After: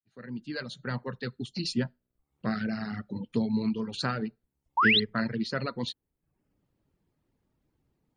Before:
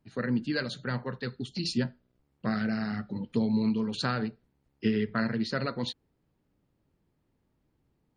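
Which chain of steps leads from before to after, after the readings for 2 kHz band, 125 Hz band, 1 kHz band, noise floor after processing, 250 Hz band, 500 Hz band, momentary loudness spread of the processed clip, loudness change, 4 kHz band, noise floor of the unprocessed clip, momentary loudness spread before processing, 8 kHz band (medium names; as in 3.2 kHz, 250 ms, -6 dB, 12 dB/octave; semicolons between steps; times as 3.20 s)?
+5.0 dB, -1.5 dB, +5.0 dB, -84 dBFS, -2.0 dB, -1.5 dB, 14 LU, +1.0 dB, +5.5 dB, -75 dBFS, 9 LU, no reading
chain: fade-in on the opening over 1.00 s; reverb removal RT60 0.58 s; painted sound rise, 4.77–5.00 s, 850–4400 Hz -22 dBFS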